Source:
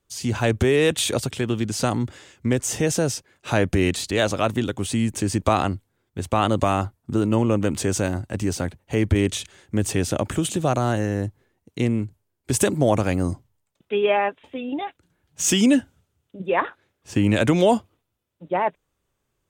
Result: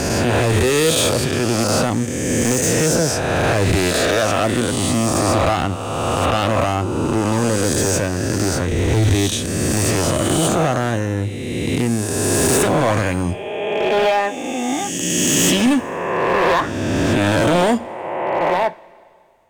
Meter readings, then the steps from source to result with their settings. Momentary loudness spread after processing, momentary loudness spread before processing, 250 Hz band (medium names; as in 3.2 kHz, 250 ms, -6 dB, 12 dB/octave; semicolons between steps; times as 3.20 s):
7 LU, 11 LU, +4.0 dB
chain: reverse spectral sustain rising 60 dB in 2.25 s; overload inside the chain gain 15 dB; two-slope reverb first 0.31 s, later 2.4 s, from -18 dB, DRR 12 dB; trim +2.5 dB